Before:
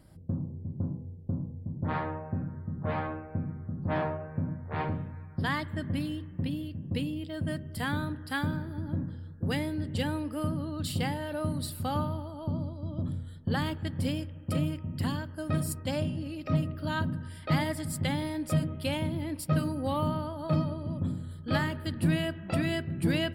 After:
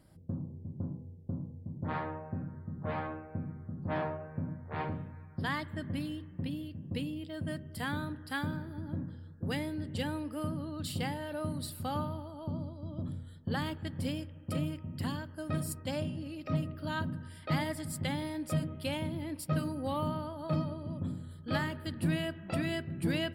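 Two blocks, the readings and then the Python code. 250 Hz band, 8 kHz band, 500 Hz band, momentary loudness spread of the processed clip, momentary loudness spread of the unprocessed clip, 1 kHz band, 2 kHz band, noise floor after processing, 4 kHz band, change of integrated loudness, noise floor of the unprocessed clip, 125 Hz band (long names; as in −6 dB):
−4.0 dB, −3.5 dB, −3.5 dB, 7 LU, 6 LU, −3.5 dB, −3.5 dB, −50 dBFS, −3.5 dB, −4.5 dB, −45 dBFS, −5.0 dB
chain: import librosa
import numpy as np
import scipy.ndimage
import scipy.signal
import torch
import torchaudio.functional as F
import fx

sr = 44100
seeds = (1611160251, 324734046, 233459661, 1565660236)

y = fx.low_shelf(x, sr, hz=85.0, db=-5.5)
y = y * librosa.db_to_amplitude(-3.5)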